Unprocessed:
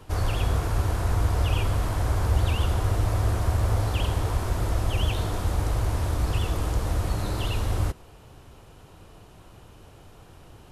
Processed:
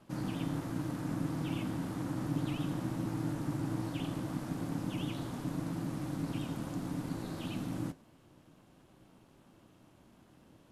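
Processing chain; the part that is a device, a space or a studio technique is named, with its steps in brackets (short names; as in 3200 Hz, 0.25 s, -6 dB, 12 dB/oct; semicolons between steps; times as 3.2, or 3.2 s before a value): alien voice (ring modulator 220 Hz; flange 0.34 Hz, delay 4.8 ms, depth 7.9 ms, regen -71%); gain -5.5 dB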